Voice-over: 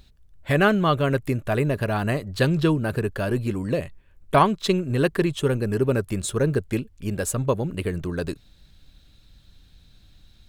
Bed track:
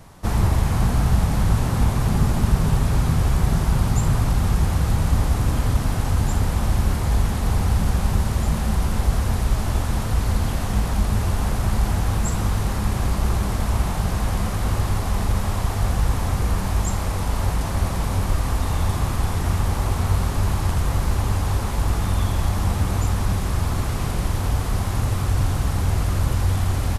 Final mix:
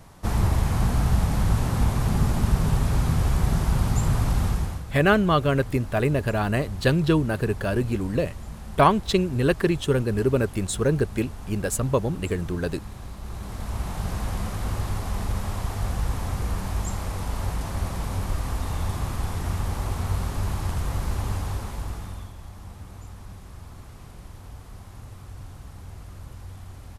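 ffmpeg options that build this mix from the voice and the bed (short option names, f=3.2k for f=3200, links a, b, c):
-filter_complex "[0:a]adelay=4450,volume=0dB[a];[1:a]volume=7.5dB,afade=t=out:st=4.42:d=0.42:silence=0.211349,afade=t=in:st=13.22:d=0.89:silence=0.298538,afade=t=out:st=21.32:d=1.01:silence=0.199526[b];[a][b]amix=inputs=2:normalize=0"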